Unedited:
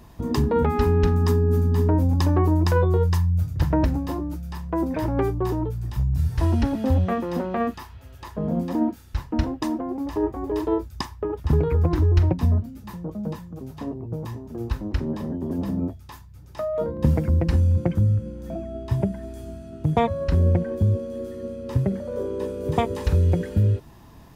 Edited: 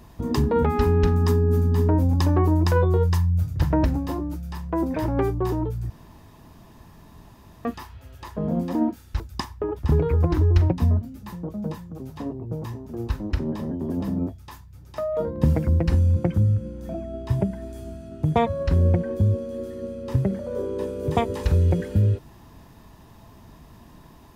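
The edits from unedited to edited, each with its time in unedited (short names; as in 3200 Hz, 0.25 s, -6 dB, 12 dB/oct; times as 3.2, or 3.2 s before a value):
5.9–7.65 room tone
9.2–10.81 cut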